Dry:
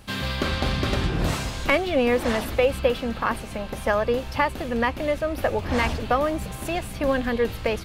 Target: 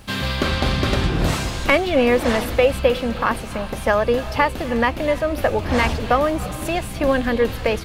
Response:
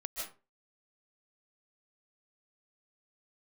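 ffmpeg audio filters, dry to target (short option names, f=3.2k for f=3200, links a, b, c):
-filter_complex "[0:a]acrusher=bits=10:mix=0:aa=0.000001,asplit=2[a][b];[1:a]atrim=start_sample=2205,asetrate=22932,aresample=44100[c];[b][c]afir=irnorm=-1:irlink=0,volume=-19dB[d];[a][d]amix=inputs=2:normalize=0,volume=3.5dB"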